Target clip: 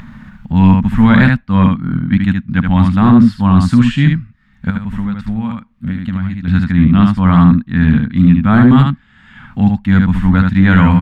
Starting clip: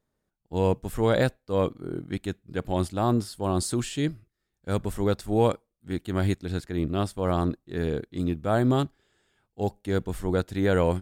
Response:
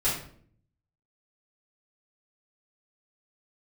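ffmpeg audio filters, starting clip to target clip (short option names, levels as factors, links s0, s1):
-filter_complex "[0:a]firequalizer=gain_entry='entry(110,0);entry(230,9);entry(360,-28);entry(950,-2);entry(1800,2);entry(4900,-16);entry(9400,-26)':delay=0.05:min_phase=1,asettb=1/sr,asplit=3[s0][s1][s2];[s0]atrim=end=4.704[s3];[s1]atrim=start=4.7:end=6.48,asetpts=PTS-STARTPTS,afade=t=in:d=0.004:c=qsin,afade=t=out:st=1.776:d=0.004:c=qsin,acompressor=threshold=0.0126:ratio=6[s4];[s2]atrim=start=6.476[s5];[s3][s4]acrossfade=d=0.004:c1=hsin:c2=qsin[s6];[s6][s5]acrossfade=d=0.004:c1=qsin:c2=hsin,aecho=1:1:74:0.562,acompressor=mode=upward:threshold=0.0355:ratio=2.5,apsyclip=7.94,volume=0.841"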